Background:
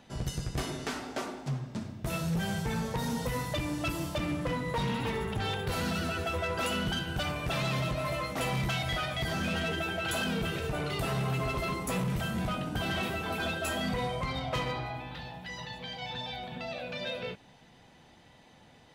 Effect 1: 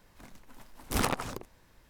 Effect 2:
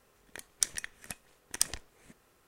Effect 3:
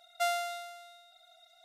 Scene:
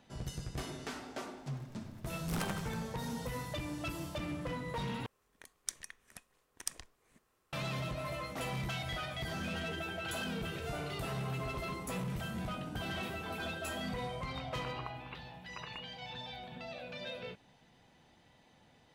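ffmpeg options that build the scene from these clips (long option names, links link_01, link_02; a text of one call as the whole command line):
ffmpeg -i bed.wav -i cue0.wav -i cue1.wav -i cue2.wav -filter_complex "[2:a]asplit=2[link_01][link_02];[0:a]volume=-7dB[link_03];[1:a]asplit=6[link_04][link_05][link_06][link_07][link_08][link_09];[link_05]adelay=83,afreqshift=150,volume=-9dB[link_10];[link_06]adelay=166,afreqshift=300,volume=-15.6dB[link_11];[link_07]adelay=249,afreqshift=450,volume=-22.1dB[link_12];[link_08]adelay=332,afreqshift=600,volume=-28.7dB[link_13];[link_09]adelay=415,afreqshift=750,volume=-35.2dB[link_14];[link_04][link_10][link_11][link_12][link_13][link_14]amix=inputs=6:normalize=0[link_15];[link_01]equalizer=frequency=1100:width_type=o:width=0.25:gain=5.5[link_16];[3:a]aresample=32000,aresample=44100[link_17];[link_02]lowpass=frequency=2500:width_type=q:width=0.5098,lowpass=frequency=2500:width_type=q:width=0.6013,lowpass=frequency=2500:width_type=q:width=0.9,lowpass=frequency=2500:width_type=q:width=2.563,afreqshift=-2900[link_18];[link_03]asplit=2[link_19][link_20];[link_19]atrim=end=5.064[link_21];[link_16]atrim=end=2.47,asetpts=PTS-STARTPTS,volume=-10.5dB[link_22];[link_20]atrim=start=7.526[link_23];[link_15]atrim=end=1.89,asetpts=PTS-STARTPTS,volume=-10.5dB,afade=type=in:duration=0.004:curve=hsin,afade=type=out:start_time=1.886:duration=0.004:curve=hsin,adelay=1370[link_24];[link_17]atrim=end=1.64,asetpts=PTS-STARTPTS,volume=-16dB,afade=type=in:duration=0.004:curve=hsin,afade=type=out:start_time=1.636:duration=0.004:curve=hsin,adelay=10460[link_25];[link_18]atrim=end=2.47,asetpts=PTS-STARTPTS,volume=-3.5dB,afade=type=in:duration=0.004:curve=hsin,afade=type=out:start_time=2.466:duration=0.004:curve=hsin,adelay=14020[link_26];[link_21][link_22]acrossfade=duration=0.004:curve1=hsin:curve2=hsin[link_27];[link_27][link_23]acrossfade=duration=0.004:curve1=hsin:curve2=hsin[link_28];[link_28][link_24][link_25][link_26]amix=inputs=4:normalize=0" out.wav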